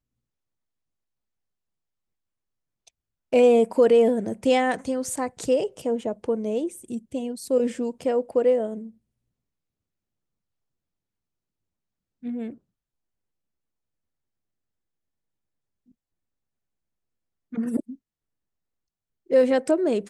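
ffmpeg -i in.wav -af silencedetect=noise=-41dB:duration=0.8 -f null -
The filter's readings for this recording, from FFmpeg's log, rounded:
silence_start: 0.00
silence_end: 2.88 | silence_duration: 2.88
silence_start: 8.90
silence_end: 12.23 | silence_duration: 3.33
silence_start: 12.54
silence_end: 17.52 | silence_duration: 4.98
silence_start: 17.95
silence_end: 19.30 | silence_duration: 1.35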